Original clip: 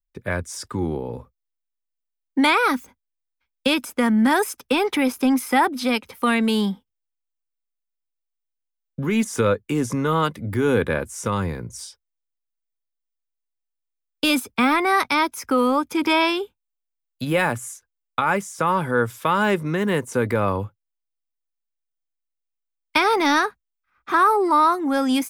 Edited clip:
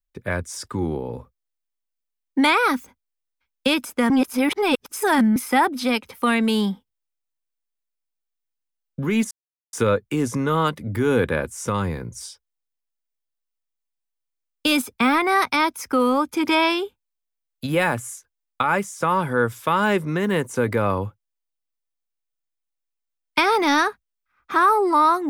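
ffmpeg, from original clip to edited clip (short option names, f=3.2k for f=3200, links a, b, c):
-filter_complex "[0:a]asplit=4[a][b][c][d];[a]atrim=end=4.102[e];[b]atrim=start=4.098:end=5.362,asetpts=PTS-STARTPTS,areverse[f];[c]atrim=start=5.358:end=9.31,asetpts=PTS-STARTPTS,afade=t=out:st=3.948:d=0.004:c=hsin,apad=pad_dur=0.42[g];[d]atrim=start=9.31,asetpts=PTS-STARTPTS,afade=t=in:d=0.004:c=hsin[h];[e][f]acrossfade=d=0.004:c1=hsin:c2=hsin[i];[g][h]concat=n=2:v=0:a=1[j];[i][j]acrossfade=d=0.004:c1=hsin:c2=hsin"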